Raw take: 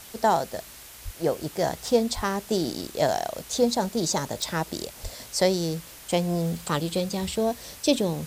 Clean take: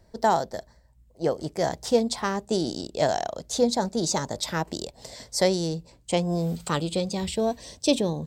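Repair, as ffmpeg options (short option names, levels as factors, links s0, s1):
-filter_complex "[0:a]adeclick=t=4,asplit=3[s0][s1][s2];[s0]afade=t=out:st=1.04:d=0.02[s3];[s1]highpass=f=140:w=0.5412,highpass=f=140:w=1.3066,afade=t=in:st=1.04:d=0.02,afade=t=out:st=1.16:d=0.02[s4];[s2]afade=t=in:st=1.16:d=0.02[s5];[s3][s4][s5]amix=inputs=3:normalize=0,asplit=3[s6][s7][s8];[s6]afade=t=out:st=2.15:d=0.02[s9];[s7]highpass=f=140:w=0.5412,highpass=f=140:w=1.3066,afade=t=in:st=2.15:d=0.02,afade=t=out:st=2.27:d=0.02[s10];[s8]afade=t=in:st=2.27:d=0.02[s11];[s9][s10][s11]amix=inputs=3:normalize=0,asplit=3[s12][s13][s14];[s12]afade=t=out:st=5.02:d=0.02[s15];[s13]highpass=f=140:w=0.5412,highpass=f=140:w=1.3066,afade=t=in:st=5.02:d=0.02,afade=t=out:st=5.14:d=0.02[s16];[s14]afade=t=in:st=5.14:d=0.02[s17];[s15][s16][s17]amix=inputs=3:normalize=0,afwtdn=0.0063"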